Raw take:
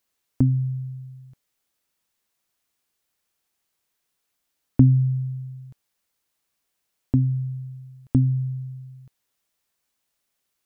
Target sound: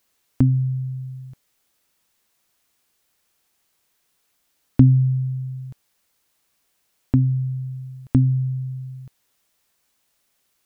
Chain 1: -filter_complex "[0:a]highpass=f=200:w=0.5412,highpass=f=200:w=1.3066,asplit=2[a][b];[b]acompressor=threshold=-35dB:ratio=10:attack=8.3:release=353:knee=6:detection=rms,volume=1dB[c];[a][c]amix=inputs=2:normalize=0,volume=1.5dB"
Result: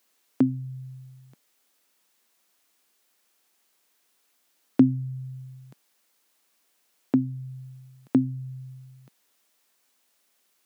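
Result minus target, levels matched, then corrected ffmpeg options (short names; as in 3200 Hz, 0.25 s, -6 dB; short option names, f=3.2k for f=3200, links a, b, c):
250 Hz band +5.0 dB
-filter_complex "[0:a]asplit=2[a][b];[b]acompressor=threshold=-35dB:ratio=10:attack=8.3:release=353:knee=6:detection=rms,volume=1dB[c];[a][c]amix=inputs=2:normalize=0,volume=1.5dB"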